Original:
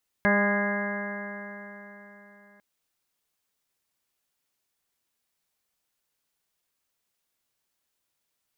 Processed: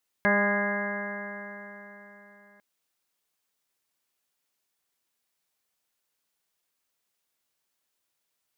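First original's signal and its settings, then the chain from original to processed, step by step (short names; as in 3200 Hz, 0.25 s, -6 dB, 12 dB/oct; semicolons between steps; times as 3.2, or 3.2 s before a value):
stretched partials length 2.35 s, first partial 202 Hz, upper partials -7.5/-2/-8.5/-8.5/-11/-16/0/-12.5/-6 dB, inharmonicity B 0.00064, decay 3.87 s, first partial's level -23 dB
low shelf 150 Hz -7 dB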